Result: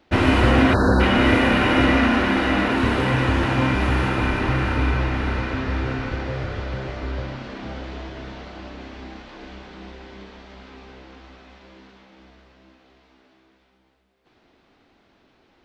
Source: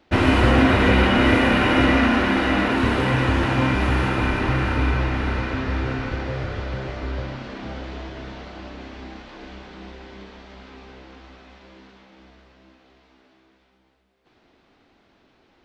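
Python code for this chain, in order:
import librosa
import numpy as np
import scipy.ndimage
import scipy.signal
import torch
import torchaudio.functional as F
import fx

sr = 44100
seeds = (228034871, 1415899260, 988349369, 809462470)

y = fx.spec_erase(x, sr, start_s=0.74, length_s=0.27, low_hz=1800.0, high_hz=3800.0)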